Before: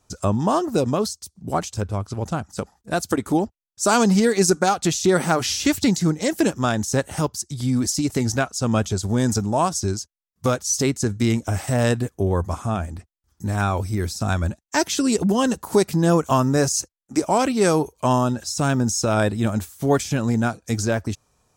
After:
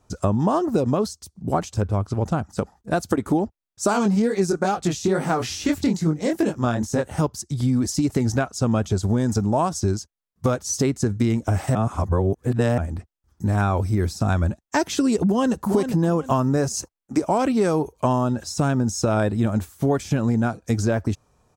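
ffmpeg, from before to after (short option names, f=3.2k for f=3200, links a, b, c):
-filter_complex "[0:a]asplit=3[a][b][c];[a]afade=t=out:st=3.92:d=0.02[d];[b]flanger=delay=19:depth=6.5:speed=2.3,afade=t=in:st=3.92:d=0.02,afade=t=out:st=7.18:d=0.02[e];[c]afade=t=in:st=7.18:d=0.02[f];[d][e][f]amix=inputs=3:normalize=0,asplit=2[g][h];[h]afade=t=in:st=15.26:d=0.01,afade=t=out:st=15.68:d=0.01,aecho=0:1:400|800|1200:0.446684|0.111671|0.0279177[i];[g][i]amix=inputs=2:normalize=0,asplit=3[j][k][l];[j]atrim=end=11.752[m];[k]atrim=start=11.748:end=12.782,asetpts=PTS-STARTPTS,areverse[n];[l]atrim=start=12.778[o];[m][n]acrossfade=d=0.004:c1=hsin:c2=hsin[p];[p][o]acrossfade=d=0.004:c1=hsin:c2=hsin,highshelf=f=2.1k:g=-9.5,acompressor=threshold=-21dB:ratio=6,volume=4.5dB"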